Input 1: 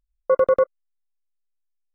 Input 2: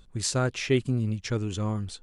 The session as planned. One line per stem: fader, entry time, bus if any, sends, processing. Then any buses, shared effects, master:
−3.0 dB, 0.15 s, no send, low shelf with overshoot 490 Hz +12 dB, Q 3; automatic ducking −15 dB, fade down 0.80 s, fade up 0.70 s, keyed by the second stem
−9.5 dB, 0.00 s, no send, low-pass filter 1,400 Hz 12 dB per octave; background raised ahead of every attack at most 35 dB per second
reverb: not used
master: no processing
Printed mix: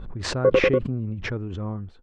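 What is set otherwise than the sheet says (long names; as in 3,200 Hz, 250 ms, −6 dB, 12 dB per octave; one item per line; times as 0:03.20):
stem 1 −3.0 dB → +6.0 dB
stem 2 −9.5 dB → −2.0 dB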